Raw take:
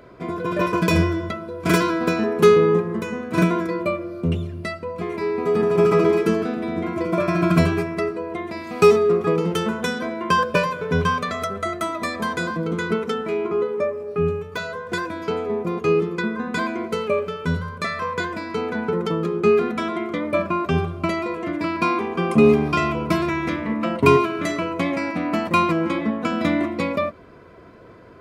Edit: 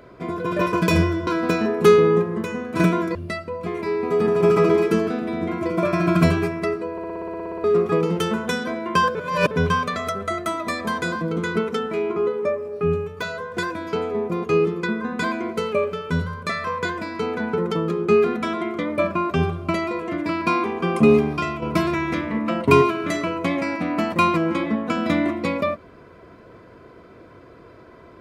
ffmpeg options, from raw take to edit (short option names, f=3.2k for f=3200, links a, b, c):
-filter_complex "[0:a]asplit=18[a][b][c][d][e][f][g][h][i][j][k][l][m][n][o][p][q][r];[a]atrim=end=1.272[s];[b]atrim=start=1.848:end=3.732[t];[c]atrim=start=4.498:end=8.332[u];[d]atrim=start=8.268:end=8.332[v];[e]atrim=start=8.268:end=8.332[w];[f]atrim=start=8.268:end=8.332[x];[g]atrim=start=8.268:end=8.332[y];[h]atrim=start=8.268:end=8.332[z];[i]atrim=start=8.268:end=8.332[aa];[j]atrim=start=8.268:end=8.332[ab];[k]atrim=start=8.268:end=8.332[ac];[l]atrim=start=8.268:end=8.332[ad];[m]atrim=start=8.268:end=8.332[ae];[n]atrim=start=8.268:end=8.332[af];[o]atrim=start=8.988:end=10.502[ag];[p]atrim=start=10.498:end=10.862,asetpts=PTS-STARTPTS,areverse[ah];[q]atrim=start=10.858:end=22.97,asetpts=PTS-STARTPTS,afade=t=out:st=11.522:d=0.59:silence=0.421697[ai];[r]atrim=start=22.97,asetpts=PTS-STARTPTS,afade=t=in:d=0.004:c=hsin:silence=0.421697[aj];[s][t]acrossfade=d=0.004:c1=hsin:c2=hsin[ak];[ak][u]acrossfade=d=0.004:c1=hsin:c2=hsin[al];[al][v]acrossfade=d=0.004:c1=hsin:c2=hsin[am];[am][w]acrossfade=d=0.004:c1=hsin:c2=hsin[an];[an][x]acrossfade=d=0.004:c1=hsin:c2=hsin[ao];[ao][y]acrossfade=d=0.004:c1=hsin:c2=hsin[ap];[ap][z]acrossfade=d=0.004:c1=hsin:c2=hsin[aq];[aq][aa]acrossfade=d=0.004:c1=hsin:c2=hsin[ar];[ar][ab]acrossfade=d=0.004:c1=hsin:c2=hsin[as];[as][ac]acrossfade=d=0.004:c1=hsin:c2=hsin[at];[at][ad]acrossfade=d=0.004:c1=hsin:c2=hsin[au];[au][ae]acrossfade=d=0.004:c1=hsin:c2=hsin[av];[av][af]acrossfade=d=0.004:c1=hsin:c2=hsin[aw];[aw][ag]acrossfade=d=0.004:c1=hsin:c2=hsin[ax];[ax][ah]acrossfade=d=0.004:c1=hsin:c2=hsin[ay];[ai][aj]concat=n=2:v=0:a=1[az];[ay][az]acrossfade=d=0.004:c1=hsin:c2=hsin"